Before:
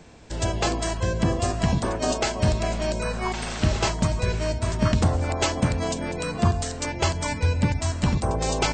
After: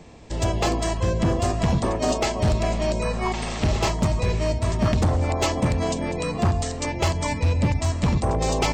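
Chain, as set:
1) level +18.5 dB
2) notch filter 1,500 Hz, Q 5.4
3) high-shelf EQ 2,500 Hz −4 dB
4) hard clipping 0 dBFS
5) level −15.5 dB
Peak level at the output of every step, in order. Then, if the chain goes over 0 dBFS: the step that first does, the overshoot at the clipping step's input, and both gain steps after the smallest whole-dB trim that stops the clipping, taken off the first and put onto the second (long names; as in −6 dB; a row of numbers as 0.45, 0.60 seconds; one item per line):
+9.5, +9.0, +8.5, 0.0, −15.5 dBFS
step 1, 8.5 dB
step 1 +9.5 dB, step 5 −6.5 dB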